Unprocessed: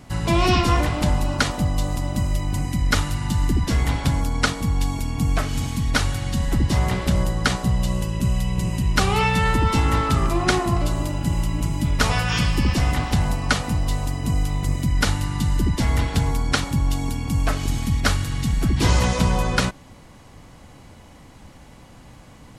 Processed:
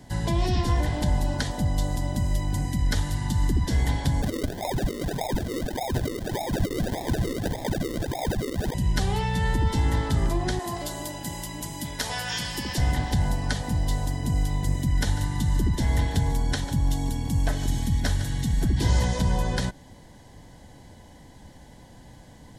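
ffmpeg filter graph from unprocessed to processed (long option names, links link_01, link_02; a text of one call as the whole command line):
ffmpeg -i in.wav -filter_complex "[0:a]asettb=1/sr,asplit=3[link_01][link_02][link_03];[link_01]atrim=end=4.224[link_04];[link_02]atrim=start=4.22:end=8.74,asetpts=PTS-STARTPTS,afade=type=in:duration=0.004:curve=qsin,afade=type=out:start_time=4.516:duration=0.004:curve=qsin,lowpass=frequency=3200:width_type=q:width=0.5098,lowpass=frequency=3200:width_type=q:width=0.6013,lowpass=frequency=3200:width_type=q:width=0.9,lowpass=frequency=3200:width_type=q:width=2.563,afreqshift=-3800,acrusher=samples=42:mix=1:aa=0.000001:lfo=1:lforange=25.2:lforate=1.7[link_05];[link_03]atrim=start=8.736[link_06];[link_04][link_05]acrossfade=duration=0.004:curve1=hsin:curve2=qsin[link_07];[link_07][link_06]acrossfade=duration=0.004:curve1=qsin:curve2=hsin,asettb=1/sr,asplit=3[link_08][link_09][link_10];[link_08]atrim=end=10.594[link_11];[link_09]atrim=start=10.59:end=12.78,asetpts=PTS-STARTPTS,afade=type=in:duration=0.004:curve=qsin,afade=type=out:start_time=2.186:duration=0.004:curve=qsin,lowpass=frequency=2900:poles=1,aemphasis=mode=production:type=riaa[link_12];[link_10]atrim=start=12.776[link_13];[link_11][link_12]acrossfade=duration=0.004:curve1=hsin:curve2=qsin[link_14];[link_14][link_13]acrossfade=duration=0.004:curve1=qsin:curve2=hsin,asettb=1/sr,asplit=3[link_15][link_16][link_17];[link_15]atrim=end=14.694[link_18];[link_16]atrim=start=14.69:end=18.74,asetpts=PTS-STARTPTS,afade=type=in:duration=0.004:curve=qsin,afade=type=out:start_time=4.046:duration=0.004:curve=qsin,bandreject=frequency=4700:width=14,aecho=1:1:145:0.141,atrim=end_sample=178605[link_19];[link_17]atrim=start=18.736[link_20];[link_18][link_19]acrossfade=duration=0.004:curve1=hsin:curve2=qsin[link_21];[link_21][link_20]acrossfade=duration=0.004:curve1=qsin:curve2=hsin,superequalizer=10b=0.282:12b=0.398,acrossover=split=150[link_22][link_23];[link_23]acompressor=threshold=-24dB:ratio=6[link_24];[link_22][link_24]amix=inputs=2:normalize=0,volume=-2.5dB" out.wav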